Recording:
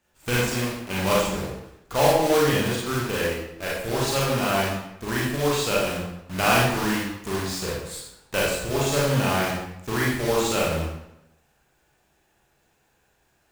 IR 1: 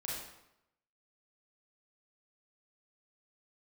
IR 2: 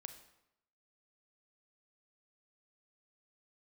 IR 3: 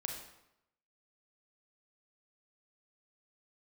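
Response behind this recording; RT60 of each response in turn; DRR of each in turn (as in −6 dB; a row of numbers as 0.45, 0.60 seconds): 1; 0.85, 0.85, 0.85 seconds; −5.5, 8.0, 1.5 decibels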